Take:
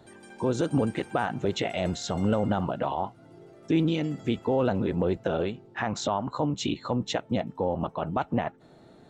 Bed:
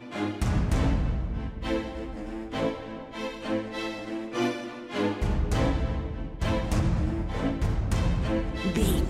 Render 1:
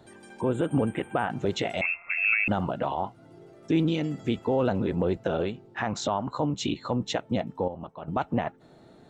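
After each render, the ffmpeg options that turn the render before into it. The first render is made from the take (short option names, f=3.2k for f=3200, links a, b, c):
-filter_complex "[0:a]asettb=1/sr,asplit=3[a][b][c];[a]atrim=end=0.414[d];[b]atrim=start=0.41:end=1.3,asetpts=PTS-STARTPTS,afade=t=in:d=0.004:c=qsin,afade=t=out:st=0.886:d=0.004:c=qsin,asuperstop=centerf=5200:order=8:qfactor=1.2[e];[c]atrim=start=1.296[f];[d][e]acrossfade=d=0.004:c1=hsin:c2=qsin[g];[g][f]acrossfade=d=0.004:c1=qsin:c2=hsin,asettb=1/sr,asplit=3[h][i][j];[h]atrim=end=1.814[k];[i]atrim=start=1.81:end=2.48,asetpts=PTS-STARTPTS,afade=t=in:d=0.004:c=qsin,afade=t=out:st=0.666:d=0.004:c=qsin,lowpass=f=2.4k:t=q:w=0.5098,lowpass=f=2.4k:t=q:w=0.6013,lowpass=f=2.4k:t=q:w=0.9,lowpass=f=2.4k:t=q:w=2.563,afreqshift=-2800[l];[j]atrim=start=2.476[m];[k][l]acrossfade=d=0.004:c1=hsin:c2=qsin[n];[n][m]acrossfade=d=0.004:c1=qsin:c2=hsin,asplit=3[o][p][q];[o]atrim=end=7.682[r];[p]atrim=start=7.678:end=8.082,asetpts=PTS-STARTPTS,volume=-9.5dB[s];[q]atrim=start=8.078[t];[r][s]acrossfade=d=0.004:c1=hsin:c2=hsin[u];[u][t]acrossfade=d=0.004:c1=hsin:c2=hsin"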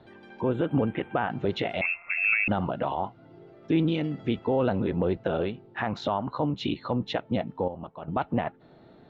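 -af "lowpass=f=4k:w=0.5412,lowpass=f=4k:w=1.3066"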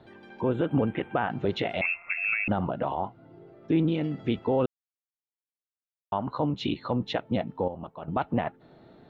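-filter_complex "[0:a]asettb=1/sr,asplit=3[a][b][c];[a]atrim=end=2.134[d];[b]atrim=start=2.13:end=4.02,asetpts=PTS-STARTPTS,afade=t=in:d=0.004:c=qsin,afade=t=out:st=1.886:d=0.004:c=qsin,highshelf=f=2.6k:g=-8[e];[c]atrim=start=4.016[f];[d][e]acrossfade=d=0.004:c1=hsin:c2=qsin[g];[g][f]acrossfade=d=0.004:c1=qsin:c2=hsin,asplit=3[h][i][j];[h]atrim=end=4.66,asetpts=PTS-STARTPTS,afade=t=out:st=4.656:d=0.004:c=hsin[k];[i]atrim=start=4.66:end=6.12,asetpts=PTS-STARTPTS,volume=0[l];[j]atrim=start=6.12,asetpts=PTS-STARTPTS,afade=t=in:d=0.004:c=hsin[m];[k][l][m]concat=n=3:v=0:a=1"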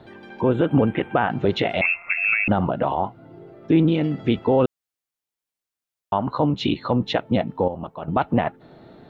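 -af "volume=7dB"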